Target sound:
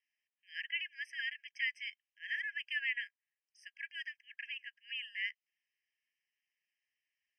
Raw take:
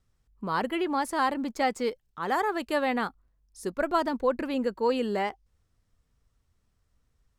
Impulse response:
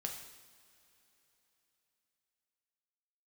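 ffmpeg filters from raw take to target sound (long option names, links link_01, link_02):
-af "asuperpass=centerf=2600:order=4:qfactor=1.1,afftfilt=real='re*eq(mod(floor(b*sr/1024/1600),2),1)':imag='im*eq(mod(floor(b*sr/1024/1600),2),1)':win_size=1024:overlap=0.75,volume=1dB"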